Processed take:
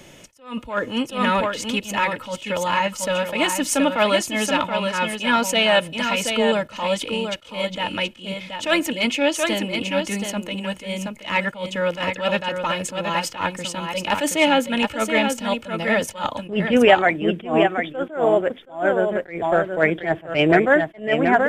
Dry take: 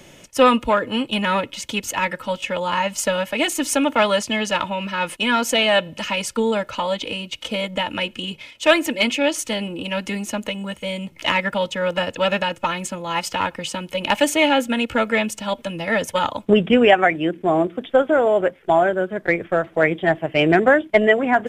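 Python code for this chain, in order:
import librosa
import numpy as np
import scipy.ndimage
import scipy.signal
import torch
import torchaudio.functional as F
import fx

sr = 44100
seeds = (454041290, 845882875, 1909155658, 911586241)

p1 = x + fx.echo_single(x, sr, ms=726, db=-6.5, dry=0)
y = fx.attack_slew(p1, sr, db_per_s=160.0)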